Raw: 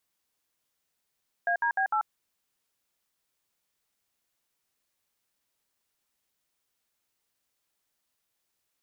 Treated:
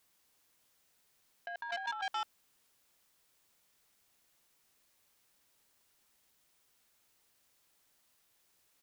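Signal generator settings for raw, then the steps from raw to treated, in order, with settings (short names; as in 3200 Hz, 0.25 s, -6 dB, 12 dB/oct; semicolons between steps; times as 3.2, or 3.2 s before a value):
DTMF "ADB8", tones 89 ms, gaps 62 ms, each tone -26 dBFS
echo 0.219 s -12.5 dB; negative-ratio compressor -37 dBFS, ratio -1; core saturation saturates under 2000 Hz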